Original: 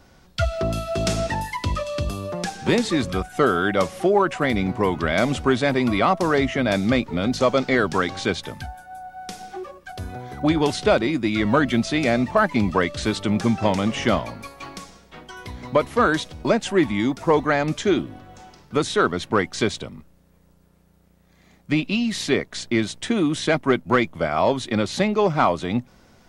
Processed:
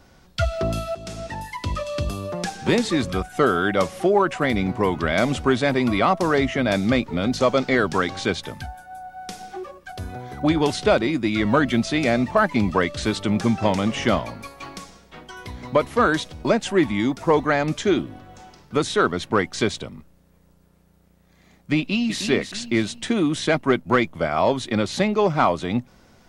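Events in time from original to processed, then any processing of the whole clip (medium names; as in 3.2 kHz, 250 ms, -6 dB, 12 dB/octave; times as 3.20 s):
0.95–1.95 s: fade in, from -17.5 dB
21.78–22.20 s: echo throw 310 ms, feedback 40%, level -8 dB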